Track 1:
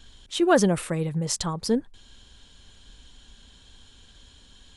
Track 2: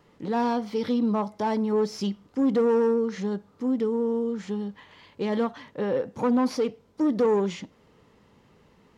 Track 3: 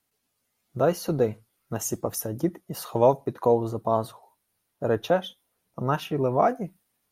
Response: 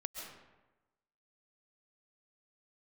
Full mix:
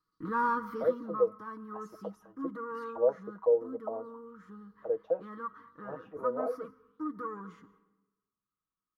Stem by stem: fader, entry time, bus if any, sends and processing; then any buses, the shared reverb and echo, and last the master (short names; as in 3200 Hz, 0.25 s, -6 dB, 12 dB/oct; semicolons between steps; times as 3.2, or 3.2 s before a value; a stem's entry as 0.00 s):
off
0.67 s -1.5 dB -> 1.19 s -13 dB, 0.00 s, send -12 dB, gate -51 dBFS, range -25 dB; EQ curve 100 Hz 0 dB, 150 Hz -11 dB, 260 Hz -3 dB, 440 Hz -11 dB, 710 Hz -26 dB, 1200 Hz +13 dB, 2500 Hz -19 dB, 4500 Hz -20 dB, 7600 Hz -17 dB, 12000 Hz +1 dB
-5.0 dB, 0.00 s, no send, auto-wah 500–4500 Hz, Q 6.3, down, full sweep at -23 dBFS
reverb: on, RT60 1.1 s, pre-delay 95 ms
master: comb 6.3 ms, depth 63%